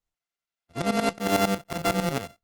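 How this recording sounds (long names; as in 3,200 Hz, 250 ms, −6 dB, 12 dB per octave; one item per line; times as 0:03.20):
a buzz of ramps at a fixed pitch in blocks of 64 samples
tremolo saw up 11 Hz, depth 85%
Opus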